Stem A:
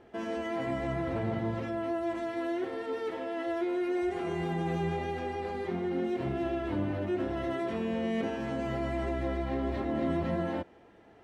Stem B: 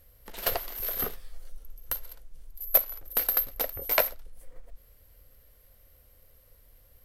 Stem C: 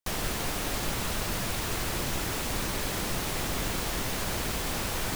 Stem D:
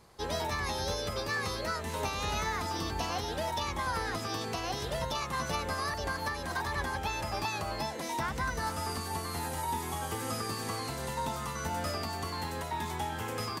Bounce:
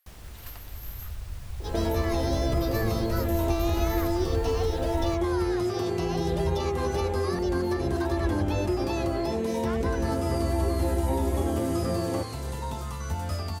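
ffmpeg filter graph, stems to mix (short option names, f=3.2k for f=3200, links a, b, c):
-filter_complex "[0:a]equalizer=f=440:t=o:w=1.6:g=11.5,acompressor=threshold=-29dB:ratio=6,adelay=1600,volume=2dB[a];[1:a]highpass=f=870:w=0.5412,highpass=f=870:w=1.3066,asoftclip=type=tanh:threshold=-30dB,volume=-10dB[b];[2:a]asubboost=boost=11.5:cutoff=89,volume=-19dB[c];[3:a]equalizer=f=1.8k:t=o:w=0.77:g=-3,adelay=1450,volume=-2dB[d];[a][b][c][d]amix=inputs=4:normalize=0,equalizer=f=72:t=o:w=1.5:g=13.5"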